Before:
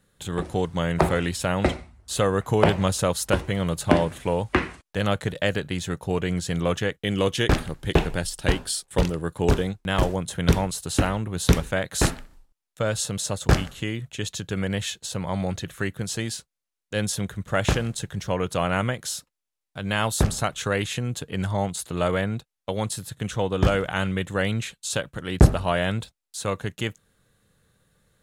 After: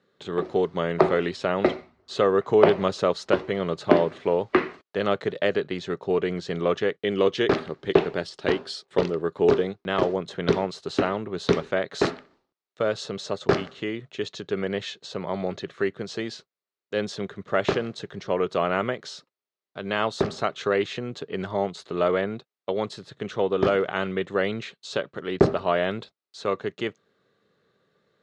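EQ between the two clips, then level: cabinet simulation 230–5300 Hz, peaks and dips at 400 Hz +10 dB, 1.2 kHz +6 dB, 2 kHz +3 dB, 4.2 kHz +3 dB; bass shelf 460 Hz +5.5 dB; peaking EQ 640 Hz +4.5 dB 0.35 oct; -4.5 dB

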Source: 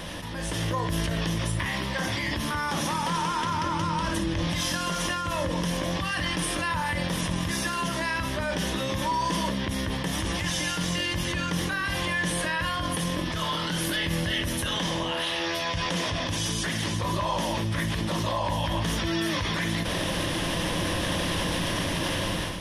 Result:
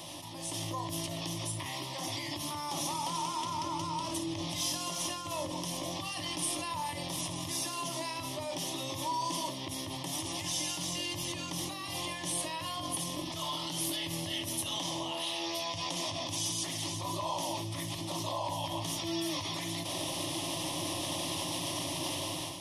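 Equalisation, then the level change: high-pass 57 Hz; tone controls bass -5 dB, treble +4 dB; static phaser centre 310 Hz, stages 8; -4.5 dB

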